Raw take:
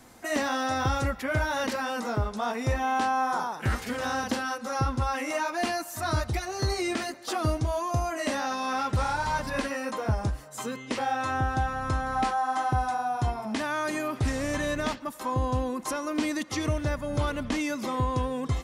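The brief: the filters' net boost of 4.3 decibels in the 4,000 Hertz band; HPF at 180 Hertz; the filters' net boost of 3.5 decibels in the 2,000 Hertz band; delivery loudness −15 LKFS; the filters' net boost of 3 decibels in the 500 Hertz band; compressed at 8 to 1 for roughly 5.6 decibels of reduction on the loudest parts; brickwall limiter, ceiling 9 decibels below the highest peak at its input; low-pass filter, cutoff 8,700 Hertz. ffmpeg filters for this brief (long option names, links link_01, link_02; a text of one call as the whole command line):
ffmpeg -i in.wav -af "highpass=180,lowpass=8700,equalizer=frequency=500:width_type=o:gain=3.5,equalizer=frequency=2000:width_type=o:gain=3.5,equalizer=frequency=4000:width_type=o:gain=4.5,acompressor=threshold=-27dB:ratio=8,volume=17.5dB,alimiter=limit=-6.5dB:level=0:latency=1" out.wav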